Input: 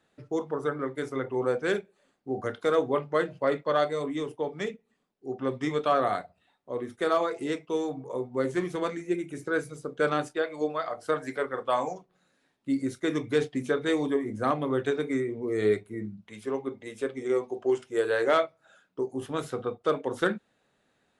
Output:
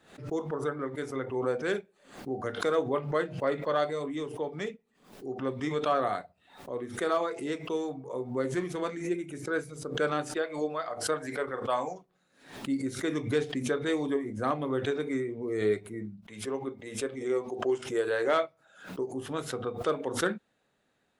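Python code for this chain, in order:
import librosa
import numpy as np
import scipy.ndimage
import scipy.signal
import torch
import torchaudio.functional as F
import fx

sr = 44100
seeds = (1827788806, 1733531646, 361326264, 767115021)

y = fx.pre_swell(x, sr, db_per_s=110.0)
y = F.gain(torch.from_numpy(y), -3.0).numpy()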